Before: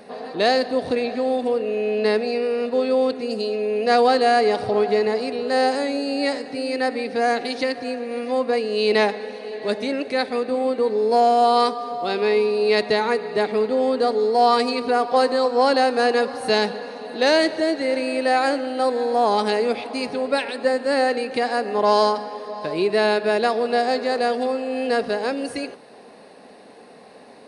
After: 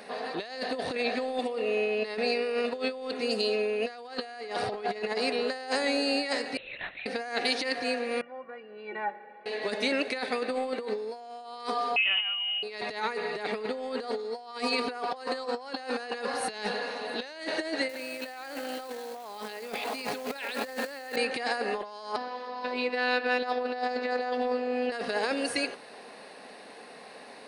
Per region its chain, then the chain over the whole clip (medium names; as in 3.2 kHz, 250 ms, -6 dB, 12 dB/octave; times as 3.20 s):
1.39–2.18 s: high-pass 150 Hz 6 dB/octave + band-stop 1.6 kHz, Q 6.4
6.57–7.06 s: differentiator + band-stop 480 Hz + LPC vocoder at 8 kHz whisper
8.21–9.46 s: low-pass 1.8 kHz 24 dB/octave + inharmonic resonator 170 Hz, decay 0.22 s, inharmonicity 0.03
11.96–12.63 s: compression 4:1, threshold -21 dBFS + frequency inversion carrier 3.3 kHz
17.89–21.16 s: high-pass 74 Hz 24 dB/octave + short-mantissa float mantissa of 2-bit + level flattener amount 70%
22.16–24.92 s: robot voice 249 Hz + distance through air 130 m
whole clip: tilt EQ +1.5 dB/octave; compressor with a negative ratio -25 dBFS, ratio -0.5; peaking EQ 1.9 kHz +5.5 dB 2.3 oct; trim -7.5 dB